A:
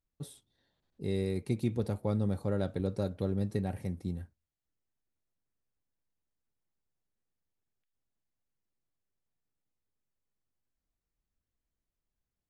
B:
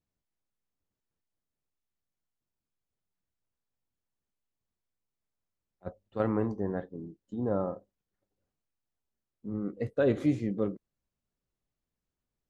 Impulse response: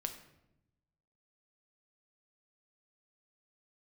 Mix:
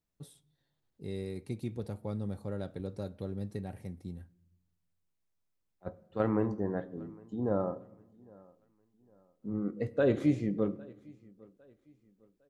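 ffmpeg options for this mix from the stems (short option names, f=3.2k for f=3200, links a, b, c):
-filter_complex "[0:a]volume=-7.5dB,asplit=2[a][b];[b]volume=-13dB[c];[1:a]volume=-4dB,asplit=3[d][e][f];[e]volume=-5dB[g];[f]volume=-21.5dB[h];[2:a]atrim=start_sample=2205[i];[c][g]amix=inputs=2:normalize=0[j];[j][i]afir=irnorm=-1:irlink=0[k];[h]aecho=0:1:806|1612|2418|3224|4030:1|0.35|0.122|0.0429|0.015[l];[a][d][k][l]amix=inputs=4:normalize=0"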